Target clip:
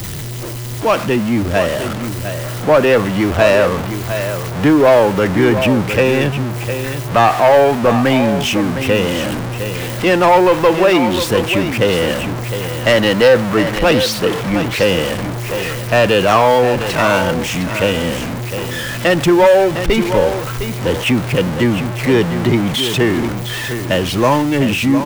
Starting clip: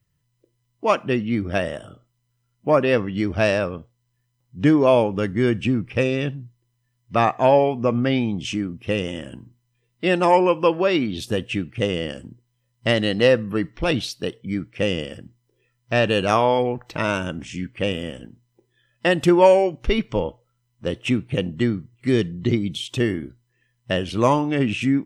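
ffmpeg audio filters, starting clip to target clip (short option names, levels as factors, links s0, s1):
-filter_complex "[0:a]aeval=exprs='val(0)+0.5*0.0631*sgn(val(0))':c=same,acrossover=split=300|400|2500[s0][s1][s2][s3];[s2]dynaudnorm=f=250:g=17:m=3.76[s4];[s0][s1][s4][s3]amix=inputs=4:normalize=0,asoftclip=type=tanh:threshold=0.335,aecho=1:1:708:0.335,volume=1.78"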